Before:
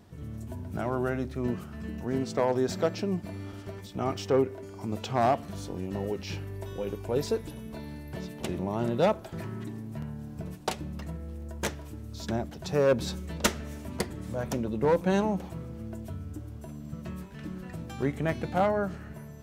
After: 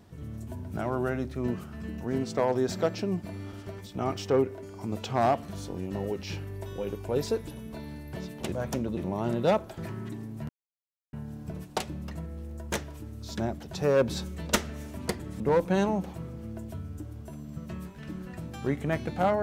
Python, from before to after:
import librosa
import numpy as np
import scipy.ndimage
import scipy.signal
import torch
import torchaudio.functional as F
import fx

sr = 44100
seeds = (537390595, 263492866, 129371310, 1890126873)

y = fx.edit(x, sr, fx.insert_silence(at_s=10.04, length_s=0.64),
    fx.move(start_s=14.31, length_s=0.45, to_s=8.52), tone=tone)